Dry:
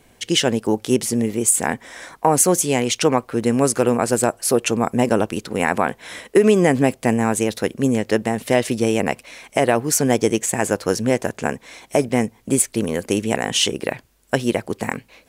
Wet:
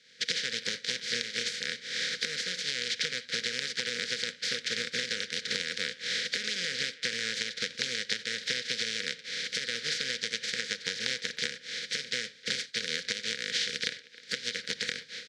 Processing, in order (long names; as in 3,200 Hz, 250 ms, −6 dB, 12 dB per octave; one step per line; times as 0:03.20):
compressing power law on the bin magnitudes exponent 0.17
camcorder AGC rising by 41 dB per second
elliptic band-stop filter 490–1,500 Hz, stop band 40 dB
parametric band 360 Hz −14 dB 0.93 octaves
downward compressor 6 to 1, threshold −21 dBFS, peak gain reduction 15.5 dB
loudspeaker in its box 280–4,700 Hz, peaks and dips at 320 Hz −6 dB, 500 Hz +4 dB, 910 Hz +7 dB, 1,400 Hz −8 dB, 2,700 Hz −9 dB
far-end echo of a speakerphone 310 ms, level −18 dB
convolution reverb, pre-delay 5 ms, DRR 10.5 dB